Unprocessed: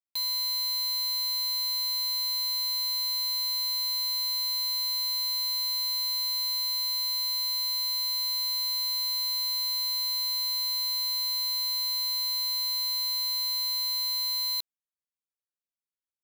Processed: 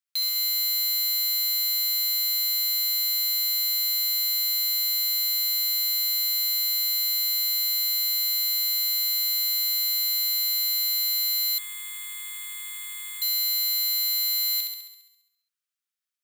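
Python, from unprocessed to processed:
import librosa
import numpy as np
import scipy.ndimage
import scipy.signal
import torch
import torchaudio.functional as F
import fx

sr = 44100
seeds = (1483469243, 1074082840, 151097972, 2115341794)

y = scipy.signal.sosfilt(scipy.signal.ellip(4, 1.0, 40, 1200.0, 'highpass', fs=sr, output='sos'), x)
y = fx.room_flutter(y, sr, wall_m=11.6, rt60_s=0.91)
y = fx.resample_bad(y, sr, factor=8, down='filtered', up='zero_stuff', at=(11.58, 13.22))
y = y * librosa.db_to_amplitude(4.5)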